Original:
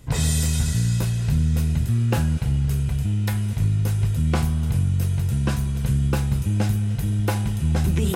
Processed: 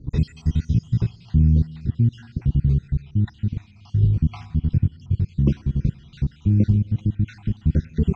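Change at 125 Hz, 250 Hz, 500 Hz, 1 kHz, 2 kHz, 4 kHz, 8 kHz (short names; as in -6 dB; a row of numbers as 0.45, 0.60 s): 0.0 dB, +1.5 dB, -5.0 dB, under -15 dB, under -10 dB, under -10 dB, under -25 dB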